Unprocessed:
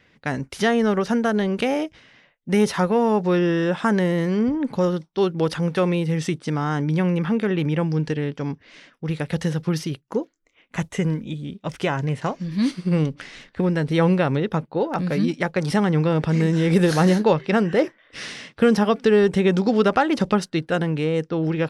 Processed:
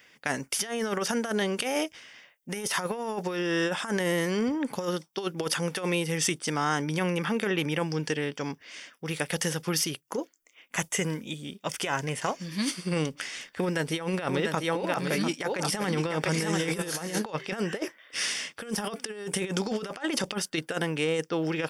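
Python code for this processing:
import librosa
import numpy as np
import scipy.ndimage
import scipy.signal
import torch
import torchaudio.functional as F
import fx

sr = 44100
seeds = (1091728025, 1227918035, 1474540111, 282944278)

y = fx.echo_single(x, sr, ms=695, db=-6.5, at=(14.1, 17.18), fade=0.02)
y = fx.peak_eq(y, sr, hz=9400.0, db=8.0, octaves=0.24, at=(18.69, 19.48))
y = fx.riaa(y, sr, side='recording')
y = fx.notch(y, sr, hz=4000.0, q=6.1)
y = fx.over_compress(y, sr, threshold_db=-25.0, ratio=-0.5)
y = y * librosa.db_to_amplitude(-2.5)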